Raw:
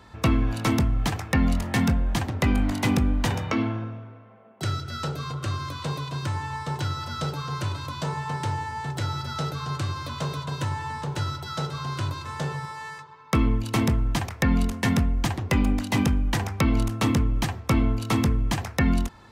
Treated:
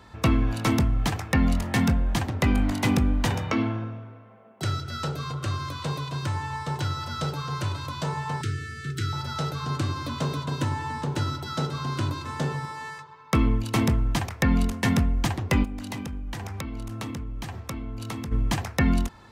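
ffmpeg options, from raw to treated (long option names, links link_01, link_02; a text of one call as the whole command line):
ffmpeg -i in.wav -filter_complex "[0:a]asettb=1/sr,asplit=3[link_01][link_02][link_03];[link_01]atrim=end=8.414[link_04];[link_02]atrim=start=8.41:end=9.13,asetpts=PTS-STARTPTS,afade=type=in:duration=0.004:curve=qsin,afade=type=out:start_time=0.716:duration=0.004:curve=qsin,asuperstop=centerf=740:order=20:qfactor=0.96[link_05];[link_03]atrim=start=9.126[link_06];[link_04][link_05]acrossfade=duration=0.004:curve1=hsin:curve2=qsin[link_07];[link_07][link_06]acrossfade=duration=0.004:curve1=qsin:curve2=hsin,asettb=1/sr,asplit=3[link_08][link_09][link_10];[link_08]atrim=end=9.644[link_11];[link_09]atrim=start=9.64:end=12.91,asetpts=PTS-STARTPTS,afade=type=in:duration=0.004:curve=qsin,afade=type=out:start_time=3.266:duration=0.004:curve=qsin,equalizer=frequency=270:width_type=o:width=0.77:gain=9.5[link_12];[link_10]atrim=start=12.906[link_13];[link_11][link_12]acrossfade=duration=0.004:curve1=hsin:curve2=qsin[link_14];[link_14][link_13]acrossfade=duration=0.004:curve1=qsin:curve2=hsin,asplit=3[link_15][link_16][link_17];[link_15]afade=type=out:start_time=15.63:duration=0.02[link_18];[link_16]acompressor=threshold=-30dB:ratio=8:attack=3.2:release=140:knee=1:detection=peak,afade=type=in:start_time=15.63:duration=0.02,afade=type=out:start_time=18.31:duration=0.02[link_19];[link_17]afade=type=in:start_time=18.31:duration=0.02[link_20];[link_18][link_19][link_20]amix=inputs=3:normalize=0" out.wav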